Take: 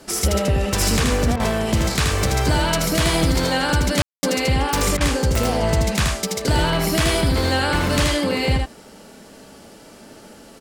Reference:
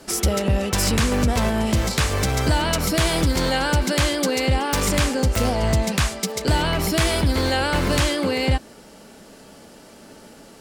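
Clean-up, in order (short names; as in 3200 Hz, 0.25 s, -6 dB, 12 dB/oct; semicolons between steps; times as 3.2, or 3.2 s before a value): room tone fill 4.02–4.23; interpolate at 1.36/4.97, 36 ms; inverse comb 79 ms -3.5 dB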